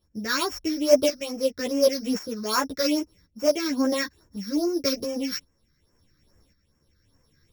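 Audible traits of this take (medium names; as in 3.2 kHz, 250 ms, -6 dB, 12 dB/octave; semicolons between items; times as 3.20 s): a buzz of ramps at a fixed pitch in blocks of 8 samples; phasing stages 6, 2.4 Hz, lowest notch 730–3900 Hz; tremolo saw up 0.92 Hz, depth 65%; a shimmering, thickened sound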